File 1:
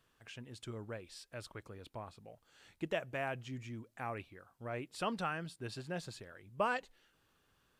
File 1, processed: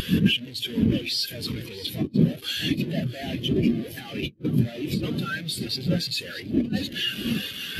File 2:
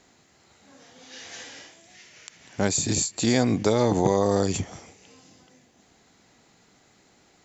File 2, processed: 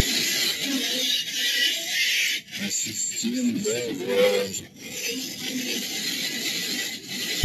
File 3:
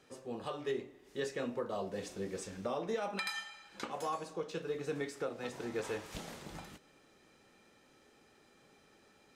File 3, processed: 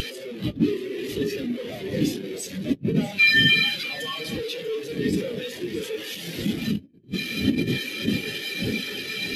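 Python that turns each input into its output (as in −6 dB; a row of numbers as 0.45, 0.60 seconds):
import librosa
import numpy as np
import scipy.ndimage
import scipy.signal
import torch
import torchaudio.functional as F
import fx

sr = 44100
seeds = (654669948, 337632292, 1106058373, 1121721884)

p1 = np.sign(x) * np.sqrt(np.mean(np.square(x)))
p2 = fx.dmg_wind(p1, sr, seeds[0], corner_hz=240.0, level_db=-37.0)
p3 = fx.sample_hold(p2, sr, seeds[1], rate_hz=1400.0, jitter_pct=0)
p4 = p2 + (p3 * librosa.db_to_amplitude(-7.5))
p5 = fx.peak_eq(p4, sr, hz=12000.0, db=13.5, octaves=0.59)
p6 = p5 + fx.echo_feedback(p5, sr, ms=640, feedback_pct=31, wet_db=-7.5, dry=0)
p7 = fx.over_compress(p6, sr, threshold_db=-30.0, ratio=-0.5)
p8 = fx.weighting(p7, sr, curve='D')
p9 = fx.spectral_expand(p8, sr, expansion=2.5)
y = p9 * 10.0 ** (-26 / 20.0) / np.sqrt(np.mean(np.square(p9)))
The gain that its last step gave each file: +16.0, +12.0, +9.0 decibels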